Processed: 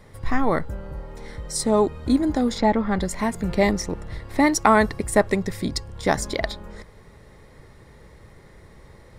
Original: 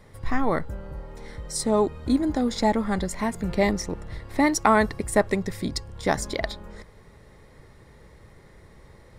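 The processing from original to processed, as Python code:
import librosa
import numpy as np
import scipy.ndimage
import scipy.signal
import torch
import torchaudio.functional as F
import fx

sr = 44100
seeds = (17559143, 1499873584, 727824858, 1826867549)

y = fx.lowpass(x, sr, hz=3500.0, slope=12, at=(2.58, 3.0))
y = F.gain(torch.from_numpy(y), 2.5).numpy()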